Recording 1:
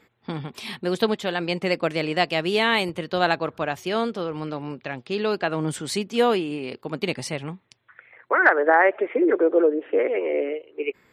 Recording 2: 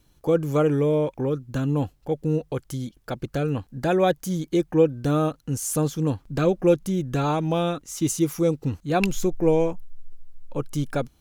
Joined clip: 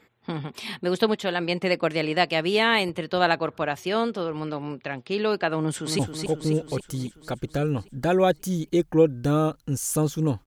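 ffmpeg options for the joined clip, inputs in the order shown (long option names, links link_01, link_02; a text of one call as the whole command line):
ffmpeg -i cue0.wav -i cue1.wav -filter_complex "[0:a]apad=whole_dur=10.46,atrim=end=10.46,atrim=end=5.992[link_01];[1:a]atrim=start=1.788:end=6.26[link_02];[link_01][link_02]acrossfade=duration=0.004:curve1=hsin:curve2=hsin,asplit=2[link_03][link_04];[link_04]afade=type=in:start_time=5.59:duration=0.01,afade=type=out:start_time=5.99:duration=0.01,aecho=0:1:270|540|810|1080|1350|1620|1890|2160|2430|2700:0.501187|0.325772|0.211752|0.137639|0.0894651|0.0581523|0.037799|0.0245693|0.0159701|0.0103805[link_05];[link_03][link_05]amix=inputs=2:normalize=0" out.wav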